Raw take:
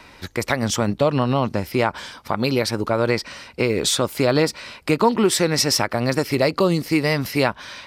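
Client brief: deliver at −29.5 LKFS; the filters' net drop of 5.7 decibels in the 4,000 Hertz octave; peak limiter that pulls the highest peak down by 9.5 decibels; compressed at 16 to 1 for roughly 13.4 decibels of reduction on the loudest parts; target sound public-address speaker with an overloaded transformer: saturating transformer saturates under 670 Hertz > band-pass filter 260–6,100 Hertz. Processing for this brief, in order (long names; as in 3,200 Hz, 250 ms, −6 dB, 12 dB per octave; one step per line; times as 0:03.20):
parametric band 4,000 Hz −6 dB
downward compressor 16 to 1, threshold −26 dBFS
brickwall limiter −22.5 dBFS
saturating transformer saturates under 670 Hz
band-pass filter 260–6,100 Hz
level +9 dB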